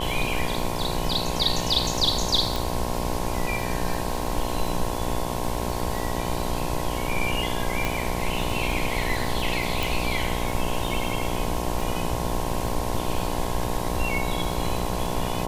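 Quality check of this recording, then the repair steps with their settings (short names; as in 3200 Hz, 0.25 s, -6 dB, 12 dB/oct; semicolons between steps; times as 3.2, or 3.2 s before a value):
buzz 60 Hz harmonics 18 -30 dBFS
crackle 50/s -31 dBFS
2.56 pop
7.85 pop
9.83 pop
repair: de-click; de-hum 60 Hz, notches 18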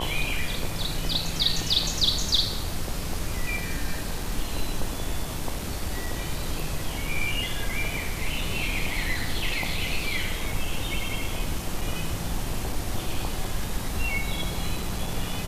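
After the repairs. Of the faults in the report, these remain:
7.85 pop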